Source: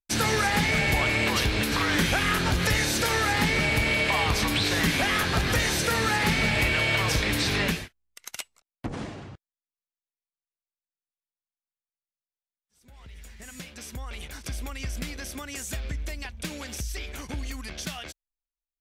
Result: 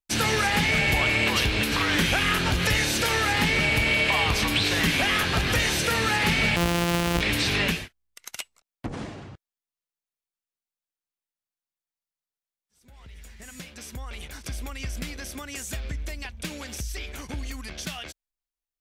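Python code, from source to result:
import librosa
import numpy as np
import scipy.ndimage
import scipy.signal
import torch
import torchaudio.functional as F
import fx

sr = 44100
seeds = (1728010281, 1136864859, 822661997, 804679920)

y = fx.sample_sort(x, sr, block=256, at=(6.56, 7.21))
y = fx.dynamic_eq(y, sr, hz=2800.0, q=2.4, threshold_db=-41.0, ratio=4.0, max_db=5)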